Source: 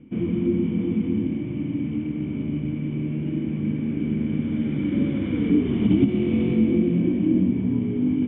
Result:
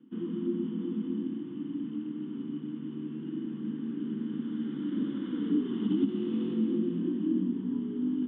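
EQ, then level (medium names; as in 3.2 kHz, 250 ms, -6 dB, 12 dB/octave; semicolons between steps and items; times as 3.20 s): high-pass 220 Hz 24 dB/octave; static phaser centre 2.3 kHz, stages 6; -4.5 dB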